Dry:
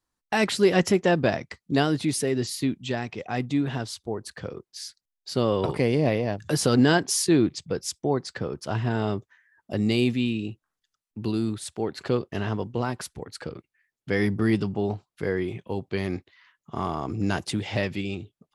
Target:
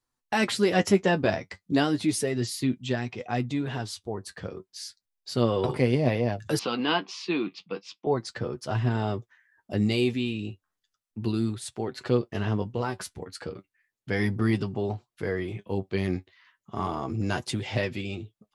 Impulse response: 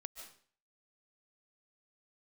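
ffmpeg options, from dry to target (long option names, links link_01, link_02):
-filter_complex "[0:a]flanger=delay=7.9:depth=2.9:regen=40:speed=0.34:shape=sinusoidal,asettb=1/sr,asplit=3[link_01][link_02][link_03];[link_01]atrim=end=6.594[link_04];[link_02]atrim=start=6.59:end=8.07,asetpts=PTS-STARTPTS,afade=type=in:duration=0.004:curve=qsin,afade=type=out:start_time=1.476:duration=0.004:curve=qsin,highpass=frequency=220:width=0.5412,highpass=frequency=220:width=1.3066,equalizer=frequency=270:width_type=q:width=4:gain=-6,equalizer=frequency=400:width_type=q:width=4:gain=-8,equalizer=frequency=600:width_type=q:width=4:gain=-9,equalizer=frequency=1100:width_type=q:width=4:gain=6,equalizer=frequency=1700:width_type=q:width=4:gain=-8,equalizer=frequency=2600:width_type=q:width=4:gain=9,lowpass=frequency=4000:width=0.5412,lowpass=frequency=4000:width=1.3066[link_05];[link_03]atrim=start=8.066[link_06];[link_04][link_05]acrossfade=duration=0.004:curve1=hsin:curve2=qsin[link_07];[link_07][link_06]acrossfade=duration=0.004:curve1=qsin:curve2=hsin,volume=2.5dB"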